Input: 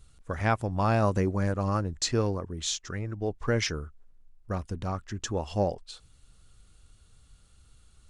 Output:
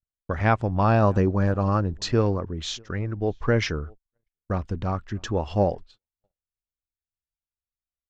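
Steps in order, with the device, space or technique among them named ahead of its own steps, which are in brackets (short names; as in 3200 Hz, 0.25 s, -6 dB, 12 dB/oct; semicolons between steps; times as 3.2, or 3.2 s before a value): shout across a valley (air absorption 160 m; outdoor echo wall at 110 m, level -27 dB); gate -44 dBFS, range -49 dB; 0.83–2.11 notch 2100 Hz, Q 6.3; gain +5.5 dB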